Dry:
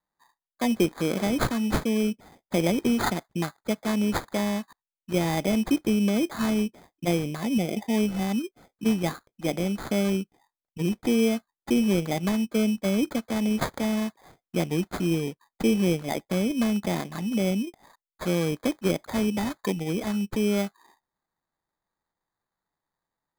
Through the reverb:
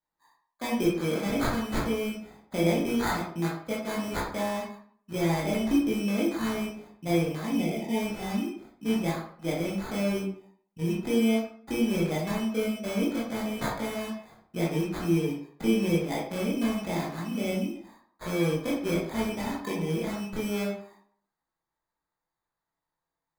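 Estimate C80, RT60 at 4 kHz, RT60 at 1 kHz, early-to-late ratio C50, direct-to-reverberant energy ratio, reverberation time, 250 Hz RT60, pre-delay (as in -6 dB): 7.5 dB, 0.40 s, 0.55 s, 2.5 dB, -7.0 dB, 0.55 s, 0.55 s, 16 ms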